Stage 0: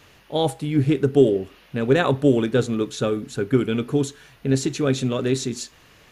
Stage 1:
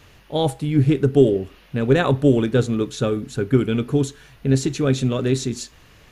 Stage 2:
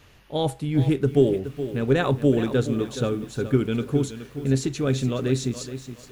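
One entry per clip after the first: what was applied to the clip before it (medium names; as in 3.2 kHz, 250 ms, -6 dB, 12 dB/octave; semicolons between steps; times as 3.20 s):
bass shelf 110 Hz +10.5 dB
bit-crushed delay 421 ms, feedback 35%, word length 7-bit, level -11.5 dB; trim -4 dB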